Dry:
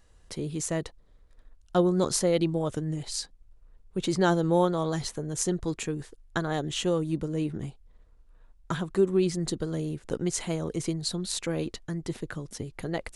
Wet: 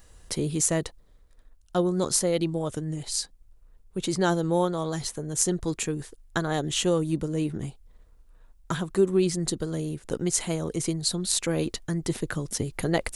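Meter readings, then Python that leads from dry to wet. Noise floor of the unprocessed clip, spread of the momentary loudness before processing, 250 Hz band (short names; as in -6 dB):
-58 dBFS, 13 LU, +1.0 dB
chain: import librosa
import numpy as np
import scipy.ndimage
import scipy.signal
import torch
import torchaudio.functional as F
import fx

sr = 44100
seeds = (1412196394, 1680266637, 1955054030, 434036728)

y = fx.high_shelf(x, sr, hz=8300.0, db=11.5)
y = fx.rider(y, sr, range_db=10, speed_s=2.0)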